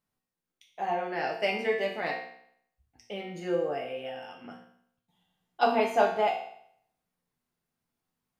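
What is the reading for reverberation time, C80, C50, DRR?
0.65 s, 8.5 dB, 5.5 dB, -2.0 dB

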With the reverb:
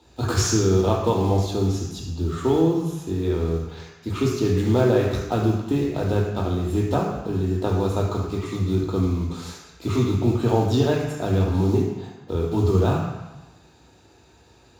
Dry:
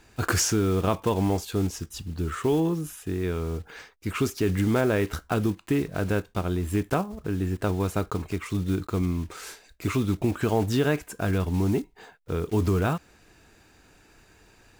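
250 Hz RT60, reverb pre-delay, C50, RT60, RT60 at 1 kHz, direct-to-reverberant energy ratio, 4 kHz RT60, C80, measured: 1.1 s, 3 ms, 3.0 dB, 1.1 s, 1.1 s, -2.0 dB, 1.1 s, 5.0 dB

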